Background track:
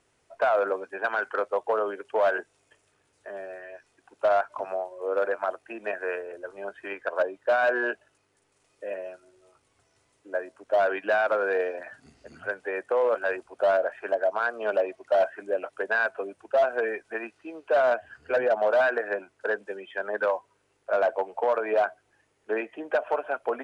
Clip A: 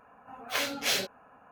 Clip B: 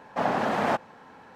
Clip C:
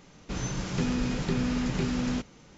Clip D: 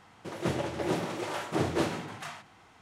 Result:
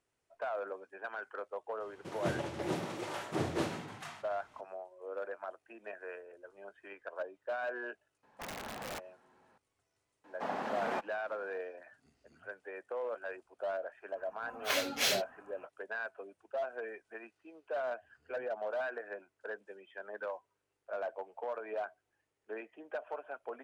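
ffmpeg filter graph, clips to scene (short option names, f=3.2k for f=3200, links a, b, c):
-filter_complex "[2:a]asplit=2[a][b];[0:a]volume=-14.5dB[c];[a]aeval=exprs='(mod(8.41*val(0)+1,2)-1)/8.41':c=same[d];[b]equalizer=f=100:t=o:w=1:g=-14.5[e];[4:a]atrim=end=2.81,asetpts=PTS-STARTPTS,volume=-5.5dB,afade=t=in:d=0.004:c=hsin,afade=t=out:st=2.806:d=0.004:c=hsin,adelay=1800[f];[d]atrim=end=1.35,asetpts=PTS-STARTPTS,volume=-17.5dB,afade=t=in:d=0.004:c=hsin,afade=t=out:st=1.346:d=0.004:c=hsin,adelay=8230[g];[e]atrim=end=1.35,asetpts=PTS-STARTPTS,volume=-11dB,afade=t=in:d=0.004:c=hsin,afade=t=out:st=1.346:d=0.004:c=hsin,adelay=10240[h];[1:a]atrim=end=1.51,asetpts=PTS-STARTPTS,volume=-2.5dB,afade=t=in:d=0.004:c=hsin,afade=t=out:st=1.506:d=0.004:c=hsin,adelay=14150[i];[c][f][g][h][i]amix=inputs=5:normalize=0"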